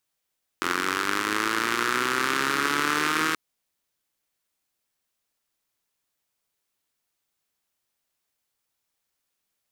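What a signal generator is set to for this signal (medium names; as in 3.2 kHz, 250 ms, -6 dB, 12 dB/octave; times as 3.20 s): four-cylinder engine model, changing speed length 2.73 s, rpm 2600, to 4800, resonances 340/1300 Hz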